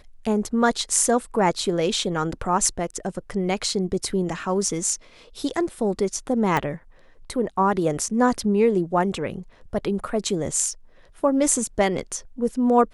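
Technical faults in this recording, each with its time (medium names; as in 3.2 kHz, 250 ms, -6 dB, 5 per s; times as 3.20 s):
6.57 s: pop -10 dBFS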